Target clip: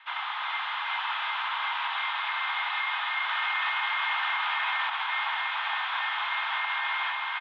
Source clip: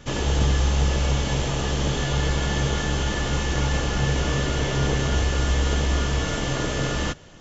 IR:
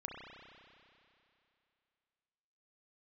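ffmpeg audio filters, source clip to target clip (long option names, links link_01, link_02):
-filter_complex "[0:a]highpass=frequency=590:width_type=q:width=0.5412,highpass=frequency=590:width_type=q:width=1.307,lowpass=frequency=2900:width_type=q:width=0.5176,lowpass=frequency=2900:width_type=q:width=0.7071,lowpass=frequency=2900:width_type=q:width=1.932,afreqshift=380,aecho=1:1:369|800:0.668|0.668,asplit=2[link_01][link_02];[1:a]atrim=start_sample=2205,lowpass=1900[link_03];[link_02][link_03]afir=irnorm=-1:irlink=0,volume=-12dB[link_04];[link_01][link_04]amix=inputs=2:normalize=0,asettb=1/sr,asplit=3[link_05][link_06][link_07];[link_05]atrim=end=3.294[link_08];[link_06]atrim=start=3.29:end=4.9,asetpts=PTS-STARTPTS,afade=type=in:duration=0.004:curve=qsin,afade=type=out:start_time=1.606:duration=0.004:curve=qsin,acontrast=43[link_09];[link_07]atrim=start=4.896[link_10];[link_08][link_09]acrossfade=duration=0.004:curve1=hsin:curve2=qsin[link_11];[link_11][link_10]acrossfade=duration=0.004:curve1=qsin:curve2=hsin,alimiter=limit=-20dB:level=0:latency=1:release=50"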